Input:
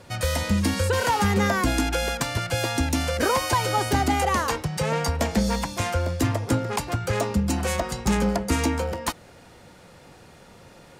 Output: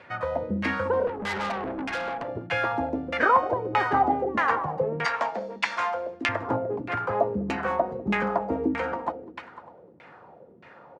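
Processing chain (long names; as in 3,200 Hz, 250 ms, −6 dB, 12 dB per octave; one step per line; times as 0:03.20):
echo machine with several playback heads 100 ms, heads second and third, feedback 43%, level −13 dB
auto-filter low-pass saw down 1.6 Hz 270–2,400 Hz
high-pass filter 110 Hz 12 dB per octave
0:01.07–0:02.28: tube saturation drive 24 dB, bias 0.4
low-shelf EQ 330 Hz −10 dB
downsampling to 32,000 Hz
0:05.05–0:06.29: meter weighting curve ITU-R 468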